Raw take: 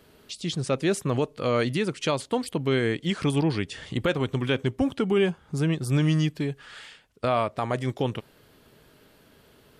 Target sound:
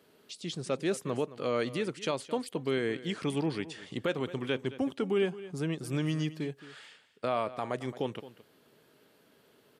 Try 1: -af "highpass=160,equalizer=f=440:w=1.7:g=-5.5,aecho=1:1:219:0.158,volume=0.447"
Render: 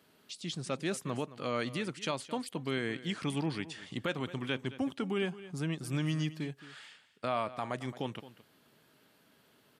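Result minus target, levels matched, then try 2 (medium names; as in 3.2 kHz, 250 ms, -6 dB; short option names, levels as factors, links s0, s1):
500 Hz band -3.0 dB
-af "highpass=160,equalizer=f=440:w=1.7:g=2,aecho=1:1:219:0.158,volume=0.447"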